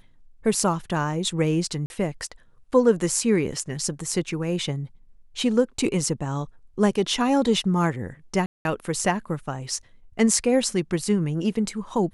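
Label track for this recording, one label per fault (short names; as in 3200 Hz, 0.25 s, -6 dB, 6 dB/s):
1.860000	1.900000	gap 41 ms
8.460000	8.650000	gap 0.191 s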